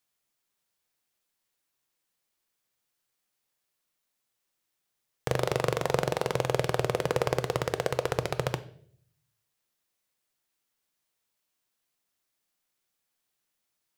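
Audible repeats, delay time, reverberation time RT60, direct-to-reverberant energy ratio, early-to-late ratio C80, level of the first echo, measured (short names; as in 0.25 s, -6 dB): none, none, 0.60 s, 11.0 dB, 20.0 dB, none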